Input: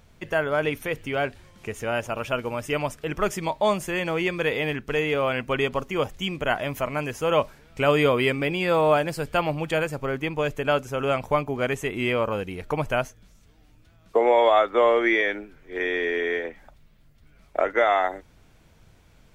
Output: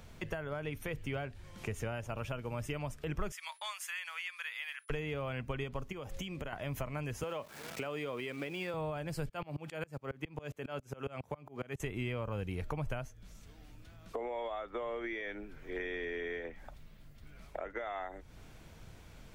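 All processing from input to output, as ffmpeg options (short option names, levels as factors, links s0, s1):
-filter_complex "[0:a]asettb=1/sr,asplit=3[s0][s1][s2];[s0]atrim=end=3.324[s3];[s1]atrim=start=3.32:end=4.9,asetpts=PTS-STARTPTS,afade=t=in:d=0.004:c=qsin,afade=t=out:st=1.576:d=0.004:c=qsin,highpass=f=1300:w=0.5412,highpass=f=1300:w=1.3066,agate=range=0.0224:threshold=0.00355:ratio=3:release=100:detection=peak,aeval=exprs='val(0)+0.00112*sin(2*PI*10000*n/s)':c=same[s4];[s2]atrim=start=4.896[s5];[s3][s4]acrossfade=d=0.004:c1=hsin:c2=qsin[s6];[s6][s5]acrossfade=d=0.004:c1=qsin:c2=hsin,asettb=1/sr,asplit=3[s7][s8][s9];[s7]atrim=end=5.924[s10];[s8]atrim=start=5.92:end=6.53,asetpts=PTS-STARTPTS,afade=t=in:d=0.004:c=qsin,afade=t=out:st=0.606:d=0.004:c=qsin,aeval=exprs='val(0)+0.00224*sin(2*PI*540*n/s)':c=same,acompressor=threshold=0.0178:ratio=5:attack=3.2:release=140:knee=1:detection=peak[s11];[s9]atrim=start=6.526[s12];[s10][s11]acrossfade=d=0.004:c1=hsin:c2=qsin[s13];[s13][s12]acrossfade=d=0.004:c1=qsin:c2=hsin,asettb=1/sr,asplit=3[s14][s15][s16];[s14]atrim=end=7.234[s17];[s15]atrim=start=7.23:end=8.74,asetpts=PTS-STARTPTS,afade=t=in:d=0.004:c=qsin,afade=t=out:st=1.506:d=0.004:c=qsin,aeval=exprs='val(0)+0.5*0.0168*sgn(val(0))':c=same,highpass=250[s18];[s16]atrim=start=8.736[s19];[s17][s18]acrossfade=d=0.004:c1=hsin:c2=qsin[s20];[s20][s19]acrossfade=d=0.004:c1=qsin:c2=hsin,asettb=1/sr,asplit=3[s21][s22][s23];[s21]atrim=end=9.294[s24];[s22]atrim=start=9.29:end=11.8,asetpts=PTS-STARTPTS,afade=t=in:d=0.004:c=qsin,afade=t=out:st=2.506:d=0.004:c=qsin,highpass=120,aeval=exprs='val(0)*pow(10,-29*if(lt(mod(-7.3*n/s,1),2*abs(-7.3)/1000),1-mod(-7.3*n/s,1)/(2*abs(-7.3)/1000),(mod(-7.3*n/s,1)-2*abs(-7.3)/1000)/(1-2*abs(-7.3)/1000))/20)':c=same[s25];[s23]atrim=start=11.796[s26];[s24][s25]acrossfade=d=0.004:c1=hsin:c2=qsin[s27];[s27][s26]acrossfade=d=0.004:c1=qsin:c2=hsin,alimiter=limit=0.126:level=0:latency=1:release=290,acrossover=split=140[s28][s29];[s29]acompressor=threshold=0.00631:ratio=3[s30];[s28][s30]amix=inputs=2:normalize=0,volume=1.26"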